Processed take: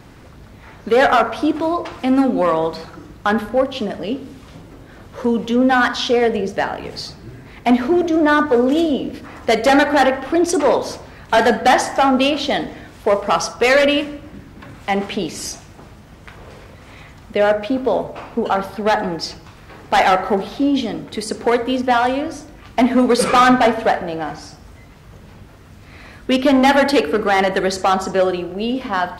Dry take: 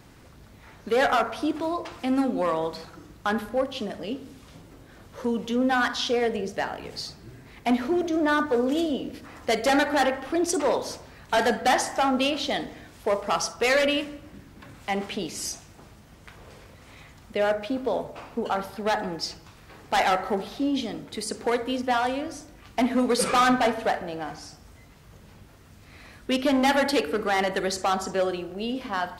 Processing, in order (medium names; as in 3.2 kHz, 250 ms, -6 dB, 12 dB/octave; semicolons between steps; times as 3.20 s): treble shelf 4.3 kHz -7 dB; trim +9 dB